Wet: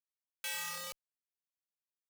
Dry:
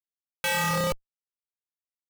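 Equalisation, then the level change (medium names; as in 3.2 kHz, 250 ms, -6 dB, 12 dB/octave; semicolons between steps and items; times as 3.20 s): high-pass 110 Hz 6 dB/octave; pre-emphasis filter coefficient 0.97; treble shelf 7.2 kHz -11 dB; -2.0 dB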